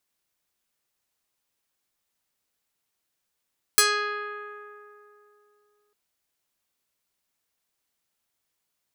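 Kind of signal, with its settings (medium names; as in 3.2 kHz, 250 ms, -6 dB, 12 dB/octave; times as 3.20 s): plucked string G#4, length 2.15 s, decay 2.98 s, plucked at 0.44, medium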